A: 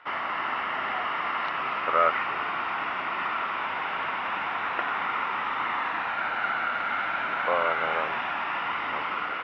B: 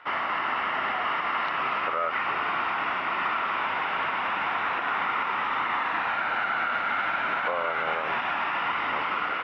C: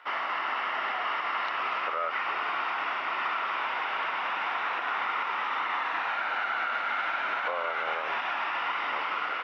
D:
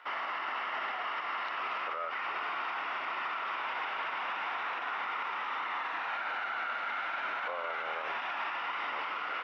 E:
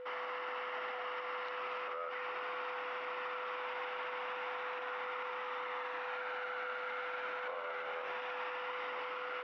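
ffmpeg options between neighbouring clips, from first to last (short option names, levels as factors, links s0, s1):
-af "alimiter=limit=0.1:level=0:latency=1:release=69,volume=1.33"
-af "bass=f=250:g=-14,treble=f=4000:g=7,volume=0.708"
-af "alimiter=level_in=1.19:limit=0.0631:level=0:latency=1,volume=0.841,volume=0.841"
-af "aeval=exprs='val(0)+0.0126*sin(2*PI*500*n/s)':c=same,volume=0.501"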